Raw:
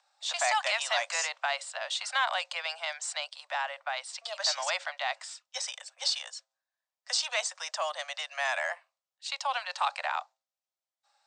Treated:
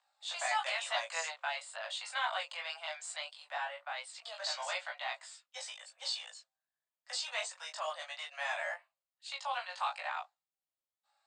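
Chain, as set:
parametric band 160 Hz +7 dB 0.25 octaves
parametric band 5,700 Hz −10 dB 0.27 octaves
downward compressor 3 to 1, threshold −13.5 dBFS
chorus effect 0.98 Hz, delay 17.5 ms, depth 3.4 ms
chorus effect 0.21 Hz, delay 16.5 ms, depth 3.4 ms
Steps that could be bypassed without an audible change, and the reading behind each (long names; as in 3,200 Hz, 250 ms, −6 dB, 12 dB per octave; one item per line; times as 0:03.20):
parametric band 160 Hz: nothing at its input below 450 Hz
downward compressor, threshold −13.5 dBFS: peak of its input −15.5 dBFS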